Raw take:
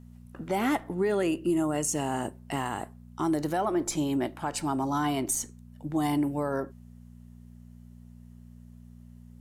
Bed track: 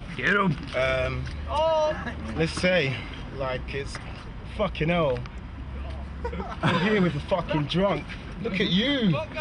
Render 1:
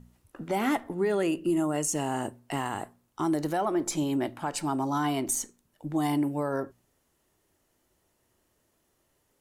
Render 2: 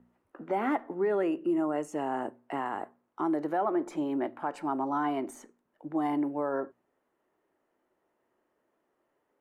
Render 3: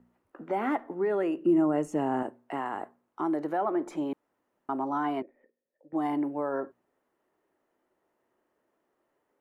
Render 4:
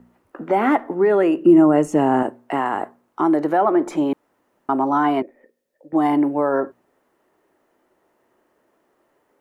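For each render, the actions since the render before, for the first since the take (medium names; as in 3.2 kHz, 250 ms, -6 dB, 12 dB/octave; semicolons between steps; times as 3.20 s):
de-hum 60 Hz, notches 4
three-band isolator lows -21 dB, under 230 Hz, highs -22 dB, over 2.1 kHz
1.45–2.23 s: bass shelf 290 Hz +12 dB; 4.13–4.69 s: room tone; 5.22–5.93 s: cascade formant filter e
trim +11.5 dB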